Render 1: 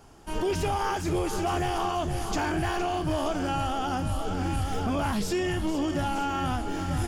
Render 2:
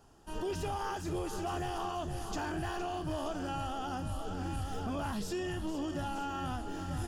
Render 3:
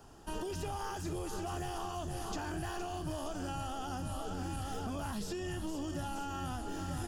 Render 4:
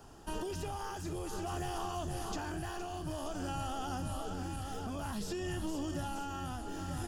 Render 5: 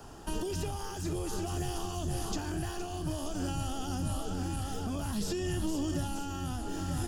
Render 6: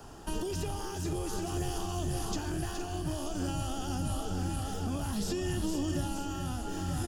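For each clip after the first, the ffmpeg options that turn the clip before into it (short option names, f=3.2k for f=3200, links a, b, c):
-af "bandreject=f=2.2k:w=5.8,volume=-8.5dB"
-filter_complex "[0:a]acrossover=split=150|5400[a][b][c];[a]acompressor=threshold=-47dB:ratio=4[d];[b]acompressor=threshold=-45dB:ratio=4[e];[c]acompressor=threshold=-56dB:ratio=4[f];[d][e][f]amix=inputs=3:normalize=0,volume=5.5dB"
-af "tremolo=f=0.53:d=0.29,volume=1.5dB"
-filter_complex "[0:a]acrossover=split=400|3000[a][b][c];[b]acompressor=threshold=-48dB:ratio=6[d];[a][d][c]amix=inputs=3:normalize=0,volume=6dB"
-af "aecho=1:1:420:0.355"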